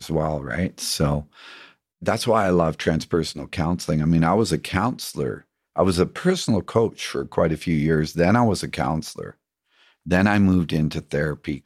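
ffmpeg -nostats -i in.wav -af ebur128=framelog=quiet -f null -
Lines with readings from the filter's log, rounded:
Integrated loudness:
  I:         -22.2 LUFS
  Threshold: -32.7 LUFS
Loudness range:
  LRA:         1.8 LU
  Threshold: -42.5 LUFS
  LRA low:   -23.5 LUFS
  LRA high:  -21.6 LUFS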